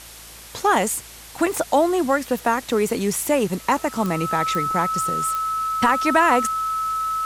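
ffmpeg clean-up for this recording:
ffmpeg -i in.wav -af "adeclick=threshold=4,bandreject=frequency=55.6:width_type=h:width=4,bandreject=frequency=111.2:width_type=h:width=4,bandreject=frequency=166.8:width_type=h:width=4,bandreject=frequency=222.4:width_type=h:width=4,bandreject=frequency=1300:width=30,afftdn=noise_reduction=25:noise_floor=-41" out.wav

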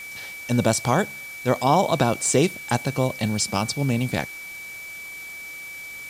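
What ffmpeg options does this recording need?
ffmpeg -i in.wav -af "bandreject=frequency=2300:width=30,afwtdn=0.0063" out.wav

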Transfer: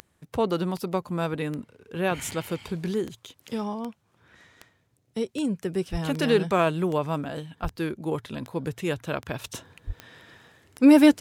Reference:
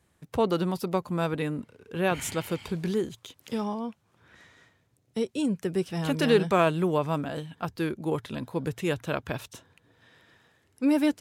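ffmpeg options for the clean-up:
ffmpeg -i in.wav -filter_complex "[0:a]adeclick=threshold=4,asplit=3[link_01][link_02][link_03];[link_01]afade=type=out:start_time=5.91:duration=0.02[link_04];[link_02]highpass=frequency=140:width=0.5412,highpass=frequency=140:width=1.3066,afade=type=in:start_time=5.91:duration=0.02,afade=type=out:start_time=6.03:duration=0.02[link_05];[link_03]afade=type=in:start_time=6.03:duration=0.02[link_06];[link_04][link_05][link_06]amix=inputs=3:normalize=0,asplit=3[link_07][link_08][link_09];[link_07]afade=type=out:start_time=7.62:duration=0.02[link_10];[link_08]highpass=frequency=140:width=0.5412,highpass=frequency=140:width=1.3066,afade=type=in:start_time=7.62:duration=0.02,afade=type=out:start_time=7.74:duration=0.02[link_11];[link_09]afade=type=in:start_time=7.74:duration=0.02[link_12];[link_10][link_11][link_12]amix=inputs=3:normalize=0,asplit=3[link_13][link_14][link_15];[link_13]afade=type=out:start_time=9.86:duration=0.02[link_16];[link_14]highpass=frequency=140:width=0.5412,highpass=frequency=140:width=1.3066,afade=type=in:start_time=9.86:duration=0.02,afade=type=out:start_time=9.98:duration=0.02[link_17];[link_15]afade=type=in:start_time=9.98:duration=0.02[link_18];[link_16][link_17][link_18]amix=inputs=3:normalize=0,asetnsamples=nb_out_samples=441:pad=0,asendcmd='9.44 volume volume -8.5dB',volume=0dB" out.wav

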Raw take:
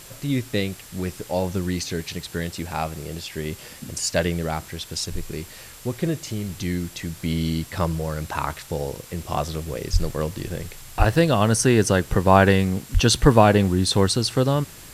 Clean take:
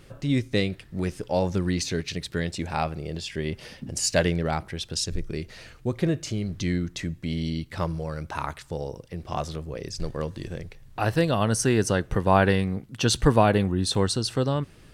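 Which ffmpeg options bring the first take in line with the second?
ffmpeg -i in.wav -filter_complex "[0:a]bandreject=frequency=7600:width=30,asplit=3[link_01][link_02][link_03];[link_01]afade=type=out:start_time=9.92:duration=0.02[link_04];[link_02]highpass=frequency=140:width=0.5412,highpass=frequency=140:width=1.3066,afade=type=in:start_time=9.92:duration=0.02,afade=type=out:start_time=10.04:duration=0.02[link_05];[link_03]afade=type=in:start_time=10.04:duration=0.02[link_06];[link_04][link_05][link_06]amix=inputs=3:normalize=0,asplit=3[link_07][link_08][link_09];[link_07]afade=type=out:start_time=10.98:duration=0.02[link_10];[link_08]highpass=frequency=140:width=0.5412,highpass=frequency=140:width=1.3066,afade=type=in:start_time=10.98:duration=0.02,afade=type=out:start_time=11.1:duration=0.02[link_11];[link_09]afade=type=in:start_time=11.1:duration=0.02[link_12];[link_10][link_11][link_12]amix=inputs=3:normalize=0,asplit=3[link_13][link_14][link_15];[link_13]afade=type=out:start_time=12.93:duration=0.02[link_16];[link_14]highpass=frequency=140:width=0.5412,highpass=frequency=140:width=1.3066,afade=type=in:start_time=12.93:duration=0.02,afade=type=out:start_time=13.05:duration=0.02[link_17];[link_15]afade=type=in:start_time=13.05:duration=0.02[link_18];[link_16][link_17][link_18]amix=inputs=3:normalize=0,afwtdn=0.0071,asetnsamples=nb_out_samples=441:pad=0,asendcmd='7.16 volume volume -4.5dB',volume=0dB" out.wav

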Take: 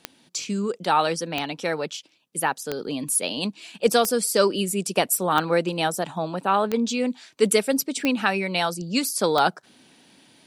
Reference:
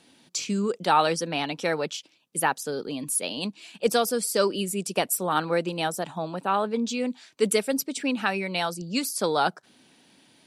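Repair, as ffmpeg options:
ffmpeg -i in.wav -af "adeclick=threshold=4,asetnsamples=nb_out_samples=441:pad=0,asendcmd='2.81 volume volume -3.5dB',volume=0dB" out.wav

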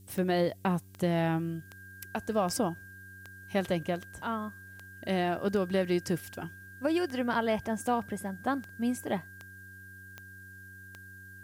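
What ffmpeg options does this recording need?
ffmpeg -i in.wav -af "adeclick=threshold=4,bandreject=frequency=95.9:width_type=h:width=4,bandreject=frequency=191.8:width_type=h:width=4,bandreject=frequency=287.7:width_type=h:width=4,bandreject=frequency=383.6:width_type=h:width=4,bandreject=frequency=1600:width=30,agate=range=-21dB:threshold=-41dB" out.wav

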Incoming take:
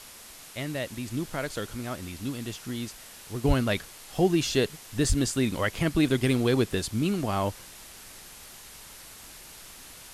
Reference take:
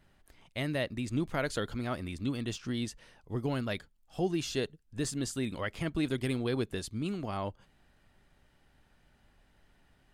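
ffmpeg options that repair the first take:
ffmpeg -i in.wav -filter_complex "[0:a]asplit=3[link_01][link_02][link_03];[link_01]afade=type=out:start_time=3.47:duration=0.02[link_04];[link_02]highpass=frequency=140:width=0.5412,highpass=frequency=140:width=1.3066,afade=type=in:start_time=3.47:duration=0.02,afade=type=out:start_time=3.59:duration=0.02[link_05];[link_03]afade=type=in:start_time=3.59:duration=0.02[link_06];[link_04][link_05][link_06]amix=inputs=3:normalize=0,asplit=3[link_07][link_08][link_09];[link_07]afade=type=out:start_time=5.08:duration=0.02[link_10];[link_08]highpass=frequency=140:width=0.5412,highpass=frequency=140:width=1.3066,afade=type=in:start_time=5.08:duration=0.02,afade=type=out:start_time=5.2:duration=0.02[link_11];[link_09]afade=type=in:start_time=5.2:duration=0.02[link_12];[link_10][link_11][link_12]amix=inputs=3:normalize=0,afwtdn=0.0056,asetnsamples=nb_out_samples=441:pad=0,asendcmd='3.44 volume volume -8dB',volume=0dB" out.wav

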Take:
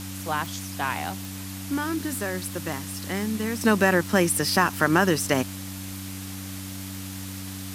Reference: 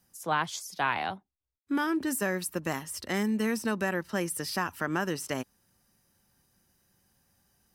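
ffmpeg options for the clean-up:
ffmpeg -i in.wav -af "adeclick=threshold=4,bandreject=frequency=95.5:width_type=h:width=4,bandreject=frequency=191:width_type=h:width=4,bandreject=frequency=286.5:width_type=h:width=4,afwtdn=0.011,asetnsamples=nb_out_samples=441:pad=0,asendcmd='3.61 volume volume -10dB',volume=0dB" out.wav

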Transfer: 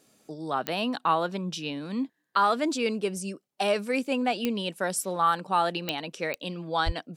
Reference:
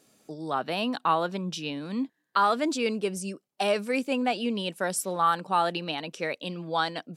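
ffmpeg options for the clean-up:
ffmpeg -i in.wav -filter_complex "[0:a]adeclick=threshold=4,asplit=3[link_01][link_02][link_03];[link_01]afade=type=out:start_time=6.85:duration=0.02[link_04];[link_02]highpass=frequency=140:width=0.5412,highpass=frequency=140:width=1.3066,afade=type=in:start_time=6.85:duration=0.02,afade=type=out:start_time=6.97:duration=0.02[link_05];[link_03]afade=type=in:start_time=6.97:duration=0.02[link_06];[link_04][link_05][link_06]amix=inputs=3:normalize=0" out.wav

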